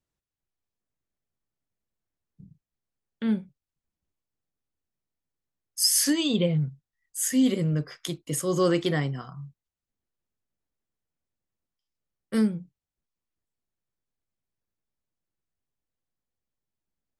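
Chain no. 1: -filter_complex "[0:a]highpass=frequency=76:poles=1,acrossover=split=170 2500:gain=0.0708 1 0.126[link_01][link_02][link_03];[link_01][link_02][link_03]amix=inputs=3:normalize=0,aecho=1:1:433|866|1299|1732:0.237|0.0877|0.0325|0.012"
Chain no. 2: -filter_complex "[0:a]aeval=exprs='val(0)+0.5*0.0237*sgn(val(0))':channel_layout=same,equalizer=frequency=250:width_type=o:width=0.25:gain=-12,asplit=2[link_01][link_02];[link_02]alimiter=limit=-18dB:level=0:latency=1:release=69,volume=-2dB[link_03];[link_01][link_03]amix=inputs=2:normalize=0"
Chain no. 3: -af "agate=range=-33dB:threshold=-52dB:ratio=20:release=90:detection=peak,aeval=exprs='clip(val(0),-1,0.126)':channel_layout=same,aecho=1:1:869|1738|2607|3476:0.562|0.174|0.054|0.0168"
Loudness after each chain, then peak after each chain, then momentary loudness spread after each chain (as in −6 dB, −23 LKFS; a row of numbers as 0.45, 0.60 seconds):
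−30.0, −23.0, −26.5 LKFS; −14.0, −7.5, −10.0 dBFS; 20, 22, 20 LU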